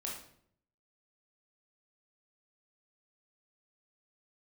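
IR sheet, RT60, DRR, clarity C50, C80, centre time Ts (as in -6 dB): 0.65 s, -3.0 dB, 3.5 dB, 8.0 dB, 41 ms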